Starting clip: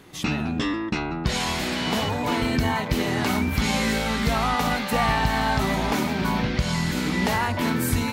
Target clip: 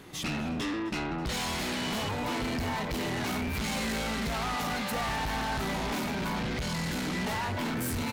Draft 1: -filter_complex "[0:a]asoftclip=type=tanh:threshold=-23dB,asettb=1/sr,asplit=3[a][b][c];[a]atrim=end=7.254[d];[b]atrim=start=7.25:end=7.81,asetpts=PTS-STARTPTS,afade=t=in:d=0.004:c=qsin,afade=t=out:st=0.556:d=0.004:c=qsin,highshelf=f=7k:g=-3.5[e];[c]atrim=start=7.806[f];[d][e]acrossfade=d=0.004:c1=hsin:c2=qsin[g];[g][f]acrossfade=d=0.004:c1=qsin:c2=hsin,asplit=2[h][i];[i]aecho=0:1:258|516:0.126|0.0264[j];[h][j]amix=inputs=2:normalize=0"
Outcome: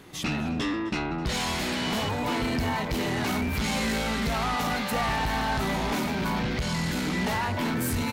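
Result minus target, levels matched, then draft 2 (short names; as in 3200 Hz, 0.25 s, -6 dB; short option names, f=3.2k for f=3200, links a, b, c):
soft clip: distortion -4 dB
-filter_complex "[0:a]asoftclip=type=tanh:threshold=-29.5dB,asettb=1/sr,asplit=3[a][b][c];[a]atrim=end=7.254[d];[b]atrim=start=7.25:end=7.81,asetpts=PTS-STARTPTS,afade=t=in:d=0.004:c=qsin,afade=t=out:st=0.556:d=0.004:c=qsin,highshelf=f=7k:g=-3.5[e];[c]atrim=start=7.806[f];[d][e]acrossfade=d=0.004:c1=hsin:c2=qsin[g];[g][f]acrossfade=d=0.004:c1=qsin:c2=hsin,asplit=2[h][i];[i]aecho=0:1:258|516:0.126|0.0264[j];[h][j]amix=inputs=2:normalize=0"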